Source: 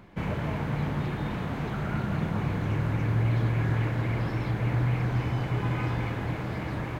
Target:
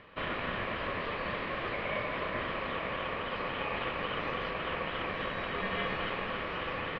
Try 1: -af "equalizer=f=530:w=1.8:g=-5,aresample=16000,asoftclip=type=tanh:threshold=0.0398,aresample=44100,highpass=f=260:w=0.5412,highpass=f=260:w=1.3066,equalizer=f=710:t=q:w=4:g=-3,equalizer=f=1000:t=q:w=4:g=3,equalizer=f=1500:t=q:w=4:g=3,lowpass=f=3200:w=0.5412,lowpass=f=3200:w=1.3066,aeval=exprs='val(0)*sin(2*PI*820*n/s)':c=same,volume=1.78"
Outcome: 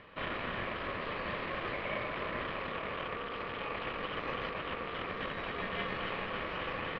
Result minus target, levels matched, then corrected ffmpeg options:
saturation: distortion +15 dB
-af "equalizer=f=530:w=1.8:g=-5,aresample=16000,asoftclip=type=tanh:threshold=0.15,aresample=44100,highpass=f=260:w=0.5412,highpass=f=260:w=1.3066,equalizer=f=710:t=q:w=4:g=-3,equalizer=f=1000:t=q:w=4:g=3,equalizer=f=1500:t=q:w=4:g=3,lowpass=f=3200:w=0.5412,lowpass=f=3200:w=1.3066,aeval=exprs='val(0)*sin(2*PI*820*n/s)':c=same,volume=1.78"

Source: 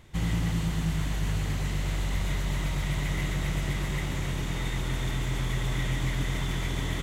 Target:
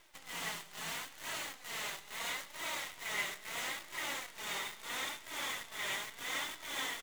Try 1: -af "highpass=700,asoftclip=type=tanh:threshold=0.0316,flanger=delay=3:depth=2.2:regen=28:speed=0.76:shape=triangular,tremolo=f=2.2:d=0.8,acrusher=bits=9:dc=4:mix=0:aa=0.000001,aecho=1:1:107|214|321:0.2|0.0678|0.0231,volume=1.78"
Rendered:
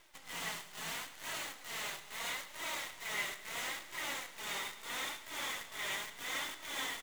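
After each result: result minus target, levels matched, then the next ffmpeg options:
saturation: distortion +11 dB; echo-to-direct +6.5 dB
-af "highpass=700,asoftclip=type=tanh:threshold=0.0668,flanger=delay=3:depth=2.2:regen=28:speed=0.76:shape=triangular,tremolo=f=2.2:d=0.8,acrusher=bits=9:dc=4:mix=0:aa=0.000001,aecho=1:1:107|214|321:0.2|0.0678|0.0231,volume=1.78"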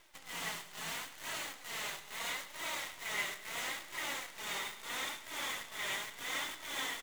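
echo-to-direct +6.5 dB
-af "highpass=700,asoftclip=type=tanh:threshold=0.0668,flanger=delay=3:depth=2.2:regen=28:speed=0.76:shape=triangular,tremolo=f=2.2:d=0.8,acrusher=bits=9:dc=4:mix=0:aa=0.000001,aecho=1:1:107|214|321:0.0944|0.0321|0.0109,volume=1.78"

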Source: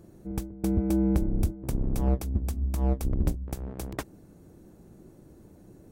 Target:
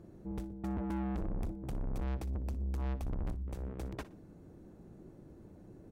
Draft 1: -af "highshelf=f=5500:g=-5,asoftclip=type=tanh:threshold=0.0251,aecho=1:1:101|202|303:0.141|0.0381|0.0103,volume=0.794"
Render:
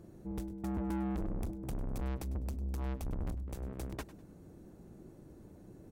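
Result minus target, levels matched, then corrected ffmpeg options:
echo 41 ms late; 8 kHz band +6.5 dB
-af "highshelf=f=5500:g=-14.5,asoftclip=type=tanh:threshold=0.0251,aecho=1:1:60|120|180:0.141|0.0381|0.0103,volume=0.794"

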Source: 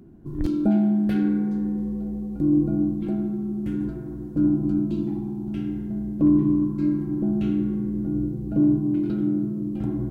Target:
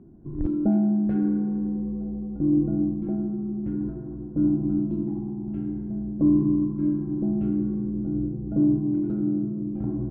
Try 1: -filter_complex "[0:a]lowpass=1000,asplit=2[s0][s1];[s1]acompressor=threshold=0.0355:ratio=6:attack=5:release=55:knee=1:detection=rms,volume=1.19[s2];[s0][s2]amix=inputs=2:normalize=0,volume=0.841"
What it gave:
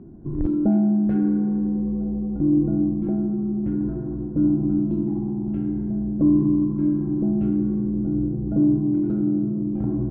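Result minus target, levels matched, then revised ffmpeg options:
compression: peak gain reduction +14.5 dB
-af "lowpass=1000,volume=0.841"

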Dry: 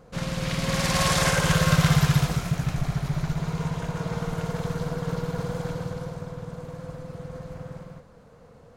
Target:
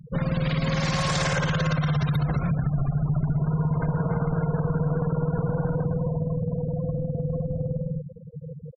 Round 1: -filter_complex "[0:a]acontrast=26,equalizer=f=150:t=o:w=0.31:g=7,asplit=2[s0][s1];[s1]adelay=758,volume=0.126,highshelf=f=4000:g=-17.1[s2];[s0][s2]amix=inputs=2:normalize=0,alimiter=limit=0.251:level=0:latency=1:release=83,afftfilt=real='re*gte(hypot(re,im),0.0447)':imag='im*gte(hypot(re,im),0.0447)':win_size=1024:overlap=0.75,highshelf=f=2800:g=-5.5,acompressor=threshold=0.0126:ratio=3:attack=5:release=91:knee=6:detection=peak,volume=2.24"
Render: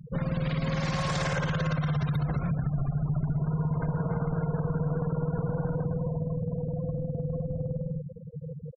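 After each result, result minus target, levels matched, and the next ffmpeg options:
compression: peak gain reduction +4 dB; 4 kHz band -3.0 dB
-filter_complex "[0:a]acontrast=26,equalizer=f=150:t=o:w=0.31:g=7,asplit=2[s0][s1];[s1]adelay=758,volume=0.126,highshelf=f=4000:g=-17.1[s2];[s0][s2]amix=inputs=2:normalize=0,alimiter=limit=0.251:level=0:latency=1:release=83,afftfilt=real='re*gte(hypot(re,im),0.0447)':imag='im*gte(hypot(re,im),0.0447)':win_size=1024:overlap=0.75,highshelf=f=2800:g=-5.5,acompressor=threshold=0.0251:ratio=3:attack=5:release=91:knee=6:detection=peak,volume=2.24"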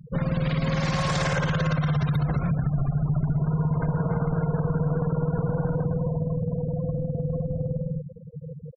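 4 kHz band -3.0 dB
-filter_complex "[0:a]acontrast=26,equalizer=f=150:t=o:w=0.31:g=7,asplit=2[s0][s1];[s1]adelay=758,volume=0.126,highshelf=f=4000:g=-17.1[s2];[s0][s2]amix=inputs=2:normalize=0,alimiter=limit=0.251:level=0:latency=1:release=83,afftfilt=real='re*gte(hypot(re,im),0.0447)':imag='im*gte(hypot(re,im),0.0447)':win_size=1024:overlap=0.75,acompressor=threshold=0.0251:ratio=3:attack=5:release=91:knee=6:detection=peak,volume=2.24"

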